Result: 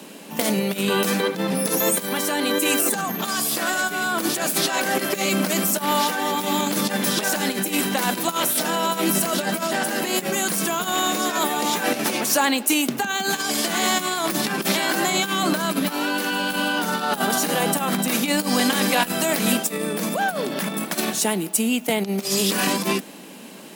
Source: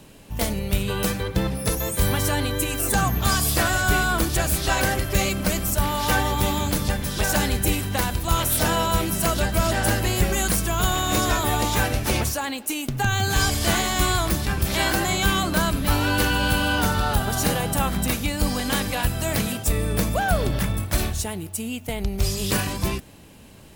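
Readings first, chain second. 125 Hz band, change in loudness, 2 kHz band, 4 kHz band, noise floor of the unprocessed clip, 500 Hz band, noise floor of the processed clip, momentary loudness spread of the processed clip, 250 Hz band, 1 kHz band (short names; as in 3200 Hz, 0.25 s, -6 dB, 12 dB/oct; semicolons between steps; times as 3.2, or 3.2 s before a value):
-9.5 dB, +1.0 dB, +1.0 dB, +2.5 dB, -40 dBFS, +2.5 dB, -36 dBFS, 4 LU, +3.0 dB, +1.5 dB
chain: negative-ratio compressor -26 dBFS, ratio -1; steep high-pass 180 Hz 48 dB/oct; gain +5.5 dB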